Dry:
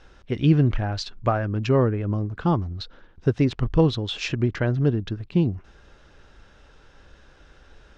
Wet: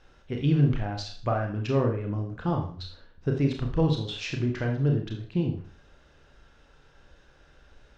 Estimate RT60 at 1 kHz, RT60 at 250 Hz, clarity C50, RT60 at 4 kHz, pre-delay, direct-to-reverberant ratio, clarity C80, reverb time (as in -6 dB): 0.45 s, 0.50 s, 7.0 dB, 0.45 s, 29 ms, 2.0 dB, 11.0 dB, 0.45 s